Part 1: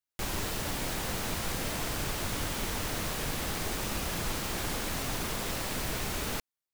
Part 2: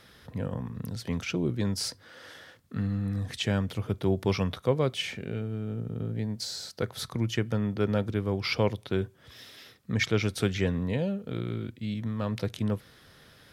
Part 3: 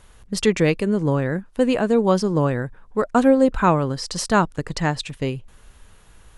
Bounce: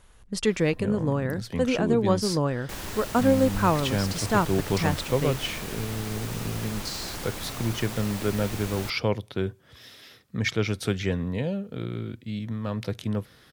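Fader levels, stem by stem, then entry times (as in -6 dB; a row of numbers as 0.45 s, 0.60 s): -2.5 dB, +0.5 dB, -5.5 dB; 2.50 s, 0.45 s, 0.00 s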